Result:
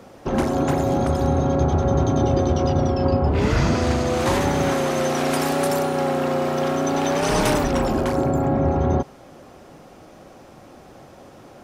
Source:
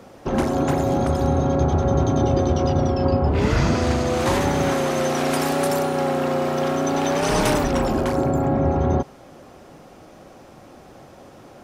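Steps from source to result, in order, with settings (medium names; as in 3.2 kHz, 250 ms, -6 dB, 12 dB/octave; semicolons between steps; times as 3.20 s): hard clipper -9.5 dBFS, distortion -35 dB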